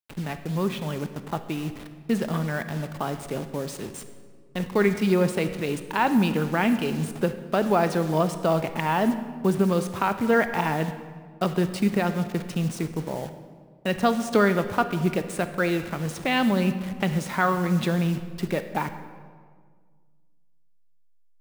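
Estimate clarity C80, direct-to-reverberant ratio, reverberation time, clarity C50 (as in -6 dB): 12.0 dB, 9.5 dB, 1.7 s, 10.5 dB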